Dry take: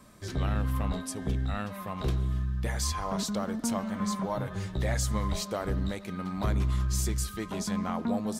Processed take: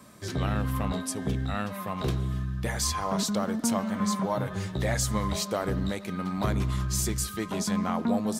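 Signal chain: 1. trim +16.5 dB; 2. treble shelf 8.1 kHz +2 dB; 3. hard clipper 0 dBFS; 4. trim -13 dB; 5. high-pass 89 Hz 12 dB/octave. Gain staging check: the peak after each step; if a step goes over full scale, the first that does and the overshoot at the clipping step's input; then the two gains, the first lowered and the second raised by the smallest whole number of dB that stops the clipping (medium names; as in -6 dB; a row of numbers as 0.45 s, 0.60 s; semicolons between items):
-2.5 dBFS, -2.0 dBFS, -2.0 dBFS, -15.0 dBFS, -14.5 dBFS; nothing clips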